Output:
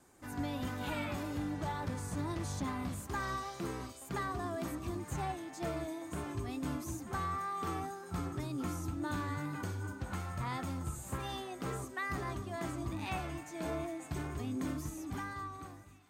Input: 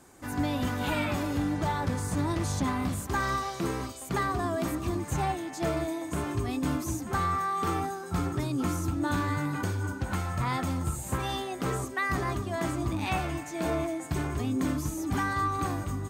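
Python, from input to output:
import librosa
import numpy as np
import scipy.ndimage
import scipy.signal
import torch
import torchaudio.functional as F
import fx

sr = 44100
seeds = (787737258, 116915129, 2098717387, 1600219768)

y = fx.fade_out_tail(x, sr, length_s=1.29)
y = fx.wow_flutter(y, sr, seeds[0], rate_hz=2.1, depth_cents=27.0)
y = fx.echo_thinned(y, sr, ms=948, feedback_pct=72, hz=670.0, wet_db=-22)
y = y * 10.0 ** (-8.5 / 20.0)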